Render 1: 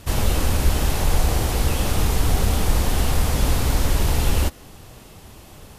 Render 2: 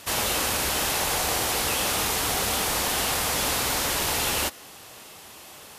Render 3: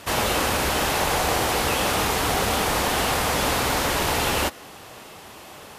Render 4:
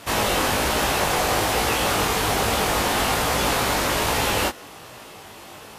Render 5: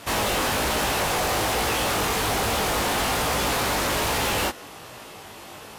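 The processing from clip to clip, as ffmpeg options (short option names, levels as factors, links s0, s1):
-af "highpass=f=970:p=1,volume=1.68"
-af "highshelf=f=3100:g=-10,volume=2.11"
-af "flanger=delay=17.5:depth=3.3:speed=1.2,volume=1.58"
-af "asoftclip=type=hard:threshold=0.0944"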